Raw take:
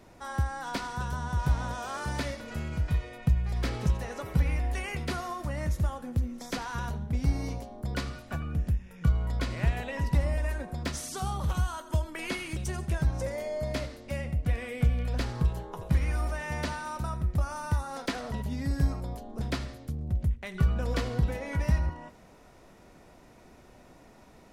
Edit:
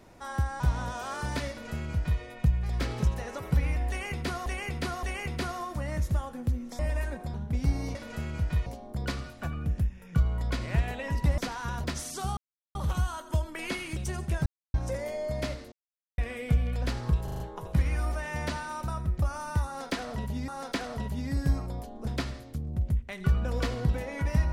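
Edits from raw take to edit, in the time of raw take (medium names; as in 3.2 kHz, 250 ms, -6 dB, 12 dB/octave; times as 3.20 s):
0.60–1.43 s: delete
2.33–3.04 s: copy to 7.55 s
4.72–5.29 s: loop, 3 plays
6.48–6.94 s: swap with 10.27–10.82 s
11.35 s: insert silence 0.38 s
13.06 s: insert silence 0.28 s
14.04–14.50 s: mute
15.56 s: stutter 0.04 s, 5 plays
17.82–18.64 s: loop, 2 plays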